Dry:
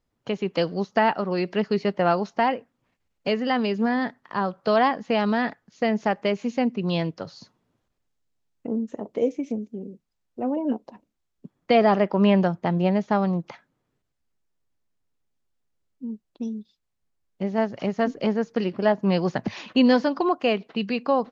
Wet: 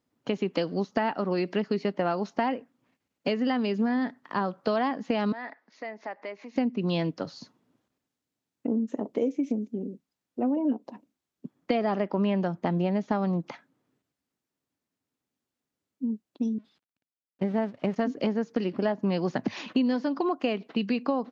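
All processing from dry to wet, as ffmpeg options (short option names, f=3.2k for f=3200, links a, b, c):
-filter_complex "[0:a]asettb=1/sr,asplit=3[a][b][c];[a]atrim=end=5.324[d];[b]atrim=start=5.32:end=6.56,asetpts=PTS-STARTPTS,afade=t=in:d=0.004:c=qsin,afade=t=out:st=1.236:d=0.004:c=qsin,acompressor=threshold=-41dB:ratio=2.5:attack=3.2:release=140:knee=1:detection=peak,highpass=420,equalizer=f=650:t=q:w=4:g=4,equalizer=f=970:t=q:w=4:g=5,equalizer=f=2k:t=q:w=4:g=8,equalizer=f=3.1k:t=q:w=4:g=-6,lowpass=f=5.2k:w=0.5412,lowpass=f=5.2k:w=1.3066[e];[c]atrim=start=6.556[f];[d][e]acrossfade=d=0.004:c1=hsin:c2=qsin[g];[g][f]acrossfade=d=0.004:c1=qsin:c2=hsin,asettb=1/sr,asplit=3[h][i][j];[h]atrim=end=16.584[k];[i]atrim=start=16.58:end=17.96,asetpts=PTS-STARTPTS,afade=t=in:d=0.004:c=qsin,afade=t=out:st=1.376:d=0.004:c=qsin,aeval=exprs='val(0)+0.5*0.0168*sgn(val(0))':c=same,lowpass=3.4k,agate=range=-22dB:threshold=-31dB:ratio=16:release=100:detection=peak[l];[j]atrim=start=17.956[m];[k][l]acrossfade=d=0.004:c1=hsin:c2=qsin[n];[n][m]acrossfade=d=0.004:c1=qsin:c2=hsin,highpass=120,equalizer=f=270:t=o:w=0.5:g=7,acompressor=threshold=-23dB:ratio=6"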